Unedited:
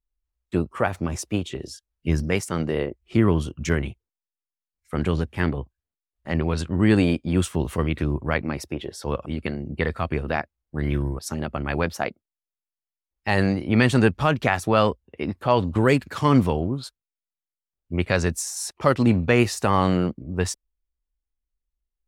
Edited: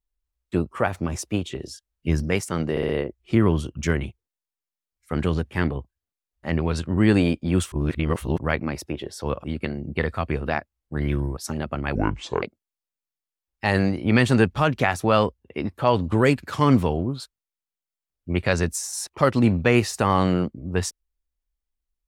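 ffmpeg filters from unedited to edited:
-filter_complex "[0:a]asplit=8[s0][s1][s2][s3][s4][s5][s6][s7];[s0]atrim=end=2.772[s8];[s1]atrim=start=2.708:end=2.772[s9];[s2]atrim=start=2.708:end=2.772[s10];[s3]atrim=start=2.708:end=7.542[s11];[s4]atrim=start=7.538:end=8.202,asetpts=PTS-STARTPTS,areverse[s12];[s5]atrim=start=8.198:end=11.774[s13];[s6]atrim=start=11.77:end=12.06,asetpts=PTS-STARTPTS,asetrate=26901,aresample=44100[s14];[s7]atrim=start=12.056[s15];[s8][s9]acrossfade=d=0.004:c1=hsin:c2=hsin[s16];[s16][s10]acrossfade=d=0.004:c1=hsin:c2=hsin[s17];[s17][s11]acrossfade=d=0.004:c1=hsin:c2=hsin[s18];[s18][s12]acrossfade=d=0.004:c1=hsin:c2=hsin[s19];[s19][s13]acrossfade=d=0.004:c1=hsin:c2=hsin[s20];[s20][s14]acrossfade=d=0.004:c1=hsin:c2=hsin[s21];[s21][s15]acrossfade=d=0.004:c1=hsin:c2=hsin"

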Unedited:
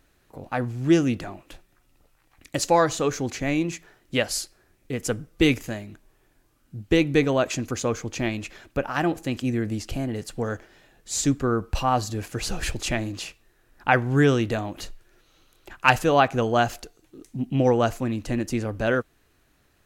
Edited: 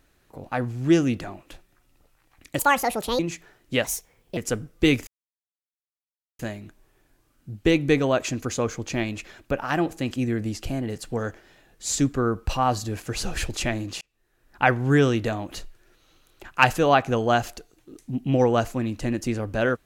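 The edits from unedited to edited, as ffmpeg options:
-filter_complex "[0:a]asplit=7[s0][s1][s2][s3][s4][s5][s6];[s0]atrim=end=2.594[s7];[s1]atrim=start=2.59:end=3.6,asetpts=PTS-STARTPTS,asetrate=74088,aresample=44100,atrim=end_sample=26512,asetpts=PTS-STARTPTS[s8];[s2]atrim=start=3.596:end=4.254[s9];[s3]atrim=start=4.25:end=4.95,asetpts=PTS-STARTPTS,asetrate=58212,aresample=44100,atrim=end_sample=23386,asetpts=PTS-STARTPTS[s10];[s4]atrim=start=4.946:end=5.65,asetpts=PTS-STARTPTS,afade=t=out:st=0.7:d=0.004:c=hsin,apad=pad_dur=1.32[s11];[s5]atrim=start=5.65:end=13.27,asetpts=PTS-STARTPTS,afade=t=in:d=0.004:c=hsin,afade=t=out:st=7.616:d=0.004:c=hsin[s12];[s6]atrim=start=13.27,asetpts=PTS-STARTPTS,afade=t=in:d=0.62[s13];[s7][s8]acrossfade=d=0.004:c1=hsin:c2=hsin[s14];[s14][s9]acrossfade=d=0.004:c1=hsin:c2=hsin[s15];[s15][s10]acrossfade=d=0.004:c1=hsin:c2=hsin[s16];[s11][s12][s13]concat=n=3:v=0:a=1[s17];[s16][s17]acrossfade=d=0.004:c1=hsin:c2=hsin"

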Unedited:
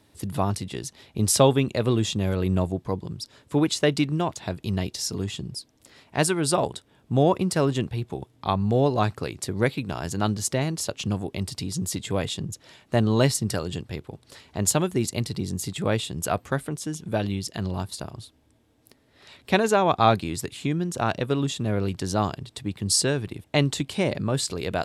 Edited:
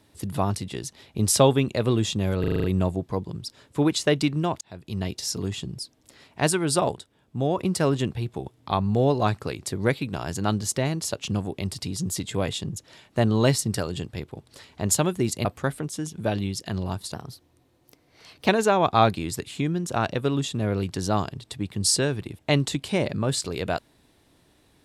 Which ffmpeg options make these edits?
-filter_complex "[0:a]asplit=13[s0][s1][s2][s3][s4][s5][s6][s7][s8][s9][s10][s11][s12];[s0]atrim=end=2.442[s13];[s1]atrim=start=2.398:end=2.442[s14];[s2]atrim=start=2.398:end=2.442[s15];[s3]atrim=start=2.398:end=2.442[s16];[s4]atrim=start=2.398:end=2.442[s17];[s5]atrim=start=2.398:end=2.442[s18];[s6]atrim=start=2.398:end=4.37,asetpts=PTS-STARTPTS,afade=t=out:st=1.968:d=0.004:c=hsin[s19];[s7]atrim=start=4.37:end=6.712,asetpts=PTS-STARTPTS,afade=t=in:d=0.73:c=qsin[s20];[s8]atrim=start=6.708:end=7.342,asetpts=PTS-STARTPTS,volume=0.562[s21];[s9]atrim=start=7.338:end=15.212[s22];[s10]atrim=start=16.328:end=18.024[s23];[s11]atrim=start=18.02:end=19.54,asetpts=PTS-STARTPTS,asetrate=49833,aresample=44100,atrim=end_sample=59320,asetpts=PTS-STARTPTS[s24];[s12]atrim=start=19.536[s25];[s13][s14]acrossfade=d=0.004:c1=hsin:c2=hsin[s26];[s26][s15]acrossfade=d=0.004:c1=hsin:c2=hsin[s27];[s27][s16]acrossfade=d=0.004:c1=hsin:c2=hsin[s28];[s28][s17]acrossfade=d=0.004:c1=hsin:c2=hsin[s29];[s29][s18]acrossfade=d=0.004:c1=hsin:c2=hsin[s30];[s19][s20]concat=n=2:v=0:a=1[s31];[s30][s31]acrossfade=d=0.004:c1=hsin:c2=hsin[s32];[s32][s21]acrossfade=d=0.004:c1=hsin:c2=hsin[s33];[s33][s22]acrossfade=d=0.004:c1=hsin:c2=hsin[s34];[s34][s23]acrossfade=d=0.004:c1=hsin:c2=hsin[s35];[s35][s24]acrossfade=d=0.004:c1=hsin:c2=hsin[s36];[s36][s25]acrossfade=d=0.004:c1=hsin:c2=hsin"

